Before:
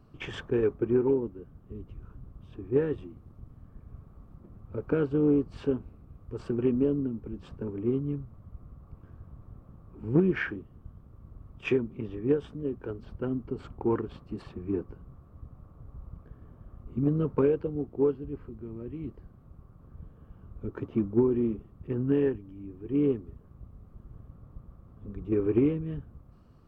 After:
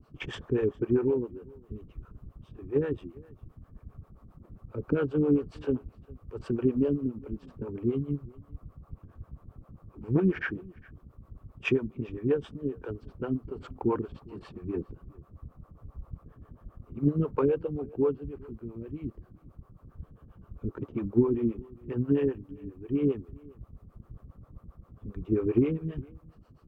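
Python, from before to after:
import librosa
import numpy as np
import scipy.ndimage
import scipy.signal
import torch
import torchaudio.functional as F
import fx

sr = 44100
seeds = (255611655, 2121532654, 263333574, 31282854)

p1 = fx.harmonic_tremolo(x, sr, hz=7.5, depth_pct=100, crossover_hz=410.0)
p2 = p1 + fx.echo_single(p1, sr, ms=407, db=-24.0, dry=0)
y = p2 * librosa.db_to_amplitude(4.5)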